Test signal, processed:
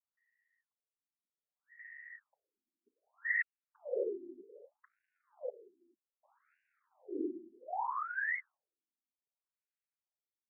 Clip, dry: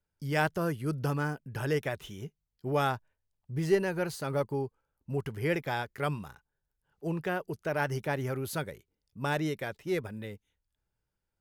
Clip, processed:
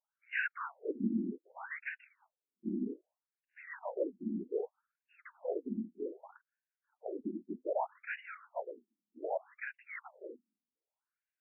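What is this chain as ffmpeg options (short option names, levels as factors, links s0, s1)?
-af "equalizer=f=120:t=o:w=0.48:g=14.5,afftfilt=real='hypot(re,im)*cos(2*PI*random(0))':imag='hypot(re,im)*sin(2*PI*random(1))':win_size=512:overlap=0.75,afftfilt=real='re*between(b*sr/1024,250*pow(2100/250,0.5+0.5*sin(2*PI*0.64*pts/sr))/1.41,250*pow(2100/250,0.5+0.5*sin(2*PI*0.64*pts/sr))*1.41)':imag='im*between(b*sr/1024,250*pow(2100/250,0.5+0.5*sin(2*PI*0.64*pts/sr))/1.41,250*pow(2100/250,0.5+0.5*sin(2*PI*0.64*pts/sr))*1.41)':win_size=1024:overlap=0.75,volume=1.78"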